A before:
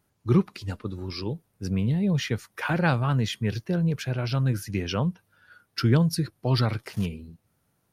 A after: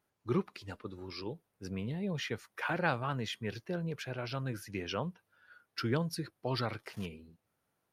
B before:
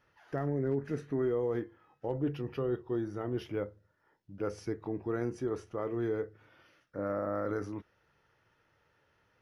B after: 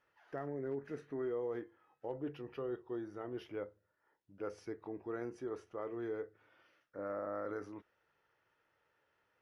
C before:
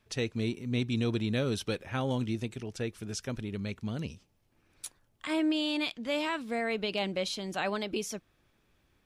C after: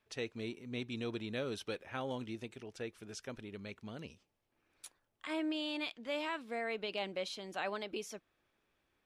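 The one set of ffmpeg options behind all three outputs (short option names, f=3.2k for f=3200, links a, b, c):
-af "bass=f=250:g=-10,treble=f=4k:g=-5,volume=-5.5dB"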